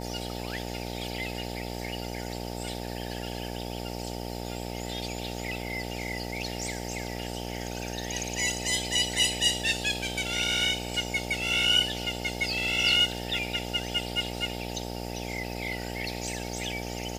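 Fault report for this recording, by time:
buzz 60 Hz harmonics 15 -36 dBFS

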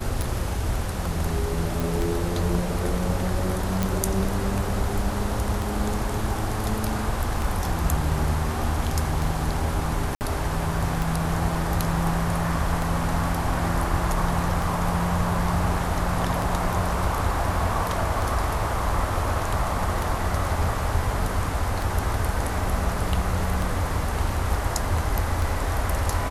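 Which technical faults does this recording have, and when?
tick 33 1/3 rpm
1.80 s: pop
3.83 s: pop
10.15–10.21 s: dropout 59 ms

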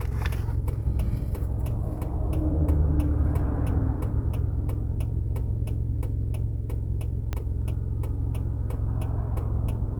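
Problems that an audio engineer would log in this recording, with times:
7.33 s: pop -16 dBFS

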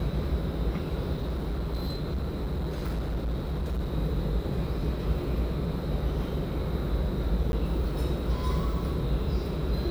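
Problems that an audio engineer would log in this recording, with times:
1.13–3.93 s: clipped -26.5 dBFS
7.52–7.53 s: dropout

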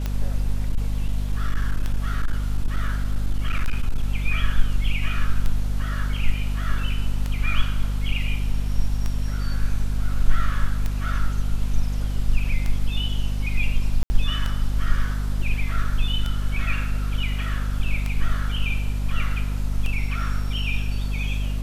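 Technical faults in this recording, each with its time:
hum 50 Hz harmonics 5 -25 dBFS
tick 33 1/3 rpm -13 dBFS
0.69–4.03 s: clipped -16 dBFS
14.03–14.10 s: dropout 70 ms

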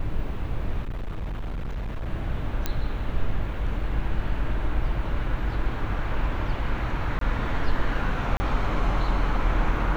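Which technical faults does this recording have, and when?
0.82–2.08 s: clipped -27 dBFS
2.66 s: pop -10 dBFS
7.19–7.21 s: dropout 23 ms
8.37–8.40 s: dropout 30 ms

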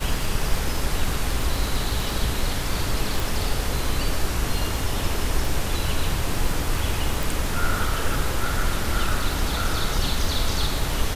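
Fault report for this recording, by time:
crackle 22 per s -26 dBFS
3.20 s: pop
7.23 s: pop

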